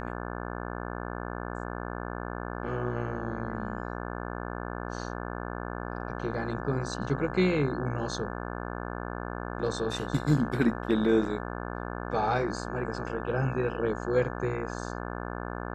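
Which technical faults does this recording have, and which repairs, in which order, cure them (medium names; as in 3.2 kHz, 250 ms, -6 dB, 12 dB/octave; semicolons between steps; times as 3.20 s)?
buzz 60 Hz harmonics 29 -36 dBFS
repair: de-hum 60 Hz, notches 29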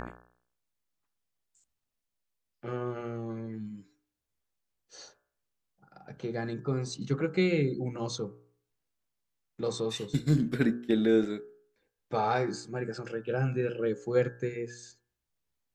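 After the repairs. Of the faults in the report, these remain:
nothing left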